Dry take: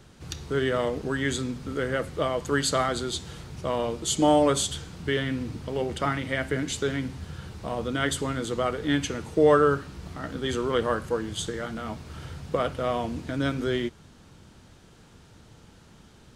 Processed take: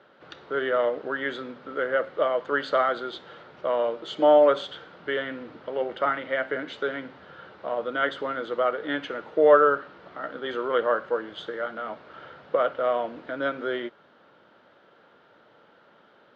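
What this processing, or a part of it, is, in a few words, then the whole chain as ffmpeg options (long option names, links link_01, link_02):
phone earpiece: -af "highpass=400,equalizer=frequency=570:width_type=q:width=4:gain=8,equalizer=frequency=1400:width_type=q:width=4:gain=6,equalizer=frequency=2500:width_type=q:width=4:gain=-6,lowpass=frequency=3200:width=0.5412,lowpass=frequency=3200:width=1.3066"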